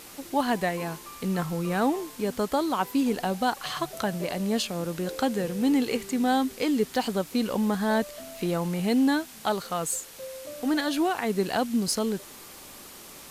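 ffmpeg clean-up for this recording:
-af "afftdn=nr=26:nf=-46"

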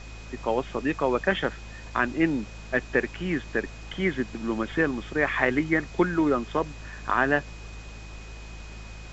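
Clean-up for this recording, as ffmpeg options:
-af "bandreject=f=53.8:t=h:w=4,bandreject=f=107.6:t=h:w=4,bandreject=f=161.4:t=h:w=4,bandreject=f=215.2:t=h:w=4,bandreject=f=2.5k:w=30,afftdn=nr=30:nf=-41"

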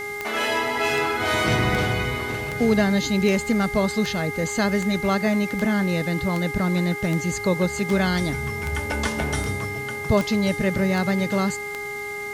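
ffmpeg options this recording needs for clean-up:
-af "adeclick=t=4,bandreject=f=410.4:t=h:w=4,bandreject=f=820.8:t=h:w=4,bandreject=f=1.2312k:t=h:w=4,bandreject=f=1.6416k:t=h:w=4,bandreject=f=2.052k:t=h:w=4,bandreject=f=2.1k:w=30,afwtdn=0.0056"

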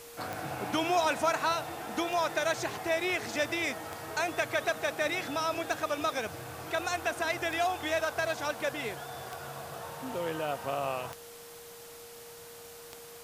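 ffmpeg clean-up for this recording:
-af "adeclick=t=4,bandreject=f=470:w=30,afwtdn=0.0032"

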